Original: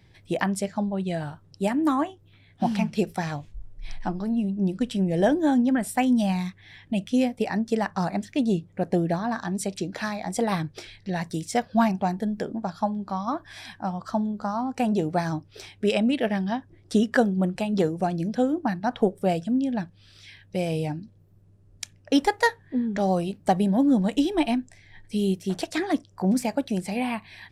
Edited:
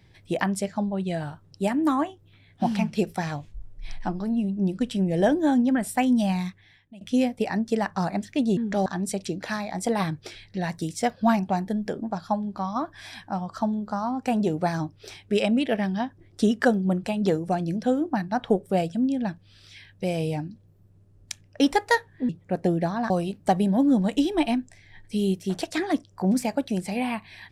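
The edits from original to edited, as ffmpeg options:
-filter_complex "[0:a]asplit=6[a][b][c][d][e][f];[a]atrim=end=7.01,asetpts=PTS-STARTPTS,afade=t=out:st=6.48:d=0.53:c=qua:silence=0.0891251[g];[b]atrim=start=7.01:end=8.572,asetpts=PTS-STARTPTS,afade=t=in:d=0.004:c=hsin:silence=0.0891251[h];[c]atrim=start=22.808:end=23.102[i];[d]atrim=start=9.378:end=22.812[j];[e]atrim=start=8.568:end=9.382[k];[f]atrim=start=23.098[l];[g][h]concat=n=2:v=0:a=1[m];[m][i]acrossfade=d=0.004:c1=hsin:c2=hsin[n];[n][j]acrossfade=d=0.004:c1=hsin:c2=hsin[o];[o][k]acrossfade=d=0.004:c1=hsin:c2=hsin[p];[p][l]acrossfade=d=0.004:c1=hsin:c2=hsin"

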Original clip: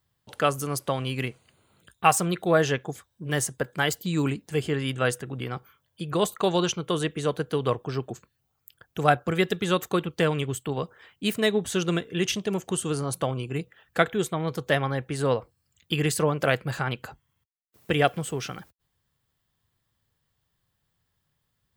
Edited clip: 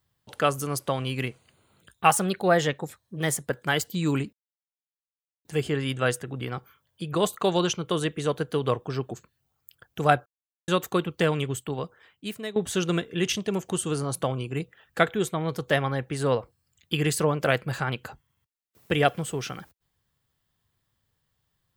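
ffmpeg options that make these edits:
-filter_complex "[0:a]asplit=7[a][b][c][d][e][f][g];[a]atrim=end=2.104[h];[b]atrim=start=2.1:end=3.6,asetpts=PTS-STARTPTS,asetrate=47628,aresample=44100[i];[c]atrim=start=3.596:end=4.44,asetpts=PTS-STARTPTS,afade=t=out:st=0.84:d=0.004:c=hsin,apad=pad_dur=1.12[j];[d]atrim=start=4.44:end=9.25,asetpts=PTS-STARTPTS,afade=t=in:d=0.004:c=hsin,afade=t=out:st=4.806:d=0.004:c=hsin[k];[e]atrim=start=9.25:end=9.67,asetpts=PTS-STARTPTS,volume=0[l];[f]atrim=start=9.67:end=11.55,asetpts=PTS-STARTPTS,afade=t=in:d=0.004:c=hsin,afade=t=out:st=0.82:d=1.06:silence=0.199526[m];[g]atrim=start=11.55,asetpts=PTS-STARTPTS,afade=t=in:d=0.004:c=hsin:silence=0.199526[n];[h][i]acrossfade=d=0.004:c1=hsin:c2=hsin[o];[j][k][l][m][n]concat=n=5:v=0:a=1[p];[o][p]acrossfade=d=0.004:c1=hsin:c2=hsin"

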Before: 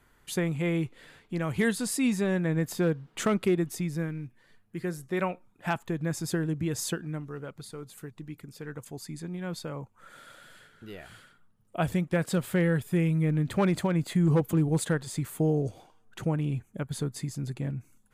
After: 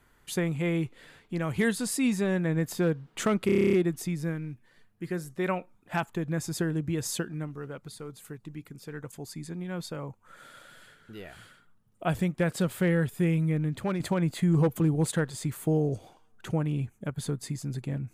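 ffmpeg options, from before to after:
-filter_complex "[0:a]asplit=11[a][b][c][d][e][f][g][h][i][j][k];[a]atrim=end=3.492[l];[b]atrim=start=3.458:end=3.492[m];[c]atrim=start=3.458:end=3.492[n];[d]atrim=start=3.458:end=3.492[o];[e]atrim=start=3.458:end=3.492[p];[f]atrim=start=3.458:end=3.492[q];[g]atrim=start=3.458:end=3.492[r];[h]atrim=start=3.458:end=3.492[s];[i]atrim=start=3.458:end=3.492[t];[j]atrim=start=3.458:end=13.73,asetpts=PTS-STARTPTS,afade=t=out:st=9.632:d=0.64:silence=0.473151[u];[k]atrim=start=13.73,asetpts=PTS-STARTPTS,afade=t=in:d=0.004:c=hsin:silence=0.473151[v];[l][m]acrossfade=d=0.004:c1=hsin:c2=hsin[w];[w][n]acrossfade=d=0.004:c1=hsin:c2=hsin[x];[x][o]acrossfade=d=0.004:c1=hsin:c2=hsin[y];[y][p]acrossfade=d=0.004:c1=hsin:c2=hsin[z];[z][q]acrossfade=d=0.004:c1=hsin:c2=hsin[aa];[aa][r]acrossfade=d=0.004:c1=hsin:c2=hsin[ab];[ab][s]acrossfade=d=0.004:c1=hsin:c2=hsin[ac];[ac][t]acrossfade=d=0.004:c1=hsin:c2=hsin[ad];[u][v]concat=n=2:v=0:a=1[ae];[ad][ae]acrossfade=d=0.004:c1=hsin:c2=hsin"

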